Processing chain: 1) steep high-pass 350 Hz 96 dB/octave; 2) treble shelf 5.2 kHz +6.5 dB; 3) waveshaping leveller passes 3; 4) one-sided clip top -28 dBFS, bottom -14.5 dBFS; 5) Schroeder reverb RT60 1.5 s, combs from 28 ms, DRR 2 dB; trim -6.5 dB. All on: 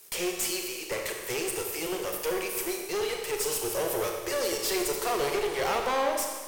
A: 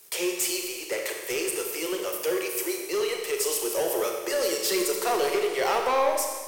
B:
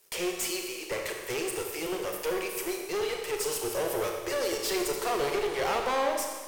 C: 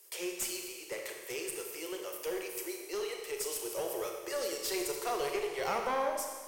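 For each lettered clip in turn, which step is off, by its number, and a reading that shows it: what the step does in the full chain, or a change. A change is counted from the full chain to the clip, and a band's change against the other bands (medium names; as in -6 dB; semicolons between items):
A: 4, distortion -10 dB; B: 2, 8 kHz band -2.5 dB; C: 3, 125 Hz band -5.5 dB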